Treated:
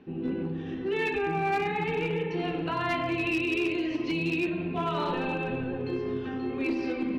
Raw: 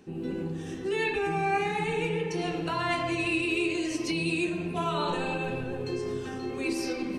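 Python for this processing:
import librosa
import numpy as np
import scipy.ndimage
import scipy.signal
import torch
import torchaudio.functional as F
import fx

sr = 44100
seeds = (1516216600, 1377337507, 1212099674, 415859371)

y = scipy.signal.sosfilt(scipy.signal.butter(4, 3500.0, 'lowpass', fs=sr, output='sos'), x)
y = fx.peak_eq(y, sr, hz=260.0, db=5.5, octaves=0.31)
y = fx.clip_asym(y, sr, top_db=-23.0, bottom_db=-20.0)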